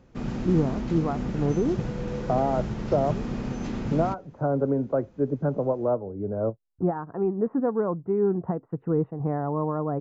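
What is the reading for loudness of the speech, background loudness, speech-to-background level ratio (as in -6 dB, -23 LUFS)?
-27.5 LUFS, -32.0 LUFS, 4.5 dB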